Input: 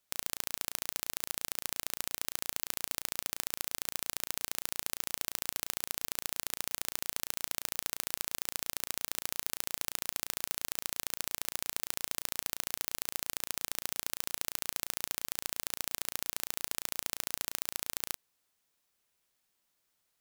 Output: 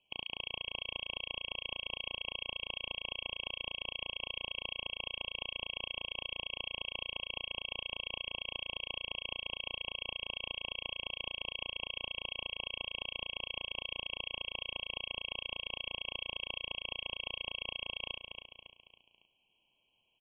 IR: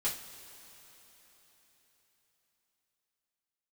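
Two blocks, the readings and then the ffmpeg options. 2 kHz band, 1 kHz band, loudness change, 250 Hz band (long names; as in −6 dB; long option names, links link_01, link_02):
+3.0 dB, −4.0 dB, −3.5 dB, −5.0 dB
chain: -af "aecho=1:1:277|554|831|1108:0.282|0.121|0.0521|0.0224,aexciter=amount=5:drive=3.9:freq=2700,aresample=8000,asoftclip=type=tanh:threshold=-25dB,aresample=44100,afftfilt=real='re*eq(mod(floor(b*sr/1024/1100),2),0)':imag='im*eq(mod(floor(b*sr/1024/1100),2),0)':win_size=1024:overlap=0.75,volume=4.5dB"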